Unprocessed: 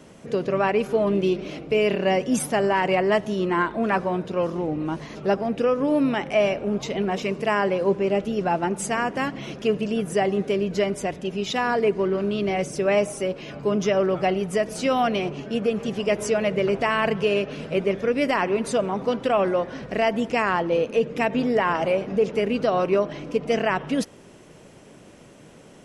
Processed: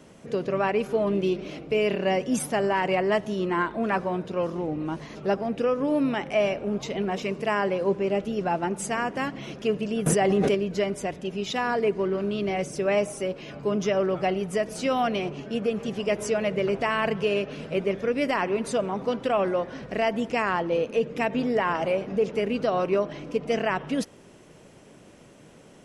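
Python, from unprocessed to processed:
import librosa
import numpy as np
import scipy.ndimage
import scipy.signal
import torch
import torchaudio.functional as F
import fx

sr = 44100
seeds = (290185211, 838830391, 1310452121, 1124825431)

y = fx.env_flatten(x, sr, amount_pct=100, at=(10.06, 10.55))
y = F.gain(torch.from_numpy(y), -3.0).numpy()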